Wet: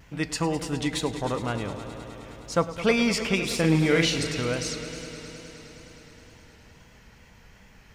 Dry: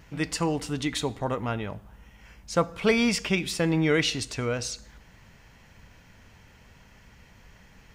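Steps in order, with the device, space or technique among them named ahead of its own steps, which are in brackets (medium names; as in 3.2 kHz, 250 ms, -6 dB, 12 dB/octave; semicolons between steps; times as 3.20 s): 3.35–4.27 s: doubling 43 ms -4.5 dB; multi-head tape echo (multi-head delay 104 ms, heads all three, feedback 73%, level -17 dB; wow and flutter)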